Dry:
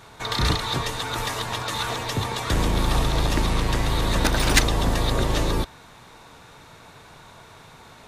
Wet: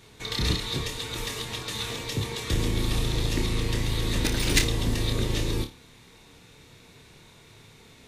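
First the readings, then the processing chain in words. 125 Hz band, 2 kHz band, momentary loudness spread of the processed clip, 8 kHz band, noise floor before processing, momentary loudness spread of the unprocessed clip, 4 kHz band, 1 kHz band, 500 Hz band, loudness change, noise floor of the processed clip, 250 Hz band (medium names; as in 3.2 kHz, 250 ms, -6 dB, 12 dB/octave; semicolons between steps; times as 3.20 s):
-3.0 dB, -5.5 dB, 8 LU, -2.5 dB, -48 dBFS, 8 LU, -2.5 dB, -12.5 dB, -5.0 dB, -4.0 dB, -53 dBFS, -3.0 dB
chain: high-order bell 970 Hz -10 dB; flutter echo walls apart 4.8 m, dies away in 0.24 s; trim -3.5 dB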